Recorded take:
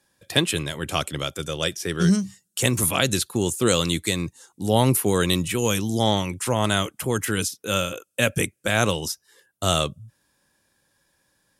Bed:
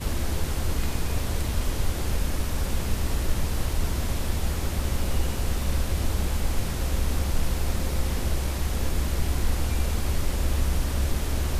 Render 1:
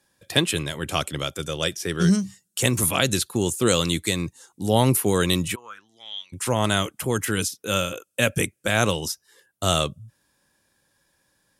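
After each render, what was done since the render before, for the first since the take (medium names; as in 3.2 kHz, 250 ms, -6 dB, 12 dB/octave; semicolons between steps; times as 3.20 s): 5.54–6.32 s: band-pass filter 920 Hz -> 4.4 kHz, Q 9.5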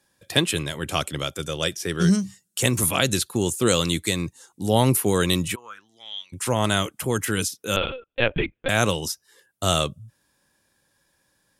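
7.76–8.69 s: LPC vocoder at 8 kHz pitch kept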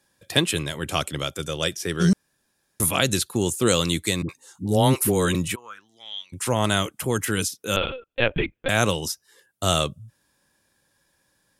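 2.13–2.80 s: room tone; 4.22–5.35 s: phase dispersion highs, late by 70 ms, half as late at 480 Hz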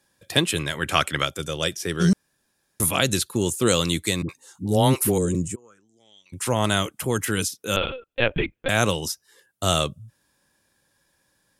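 0.58–1.24 s: peaking EQ 1.7 kHz +4.5 dB -> +14 dB 1.4 oct; 3.17–3.62 s: Butterworth band-stop 760 Hz, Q 6.2; 5.18–6.26 s: FFT filter 420 Hz 0 dB, 970 Hz -16 dB, 2.6 kHz -18 dB, 3.8 kHz -21 dB, 7.5 kHz +3 dB, 13 kHz -19 dB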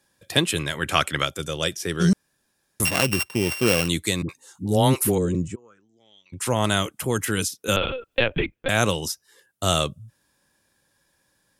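2.85–3.88 s: sorted samples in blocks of 16 samples; 5.15–6.40 s: low-pass 4.3 kHz; 7.68–8.40 s: three bands compressed up and down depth 100%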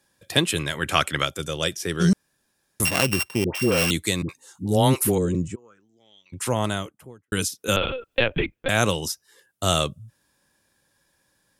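3.44–3.91 s: phase dispersion highs, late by 107 ms, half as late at 930 Hz; 6.35–7.32 s: studio fade out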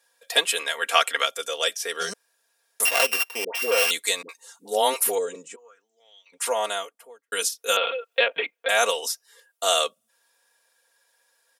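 Chebyshev high-pass 520 Hz, order 3; comb 4.3 ms, depth 80%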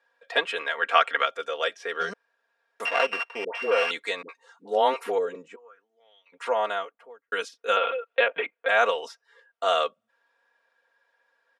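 low-pass 2.2 kHz 12 dB/octave; peaking EQ 1.4 kHz +3 dB 0.77 oct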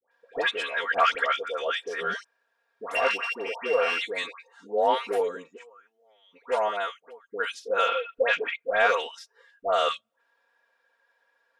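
saturation -8.5 dBFS, distortion -24 dB; phase dispersion highs, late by 114 ms, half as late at 1.1 kHz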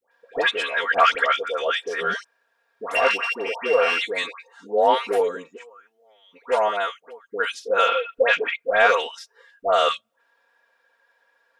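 trim +5 dB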